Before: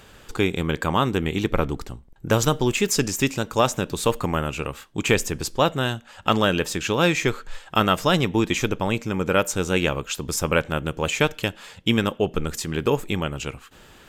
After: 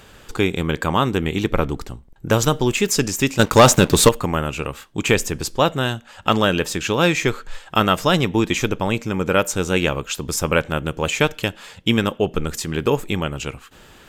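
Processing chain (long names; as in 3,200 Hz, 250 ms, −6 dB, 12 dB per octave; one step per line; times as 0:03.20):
0:03.39–0:04.09: leveller curve on the samples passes 3
level +2.5 dB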